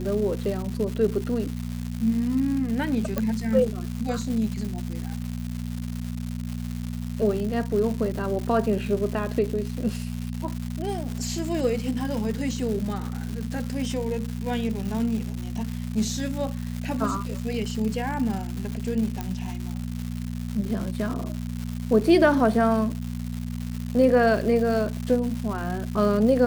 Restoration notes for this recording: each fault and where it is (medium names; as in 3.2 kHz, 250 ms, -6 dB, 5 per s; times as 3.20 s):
crackle 290 per s -30 dBFS
hum 60 Hz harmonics 4 -31 dBFS
3.18 s: pop -12 dBFS
19.21 s: pop -15 dBFS